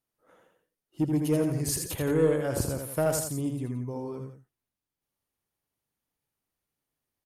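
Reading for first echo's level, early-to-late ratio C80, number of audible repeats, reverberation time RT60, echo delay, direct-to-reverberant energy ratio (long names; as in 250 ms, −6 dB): −5.0 dB, no reverb audible, 2, no reverb audible, 81 ms, no reverb audible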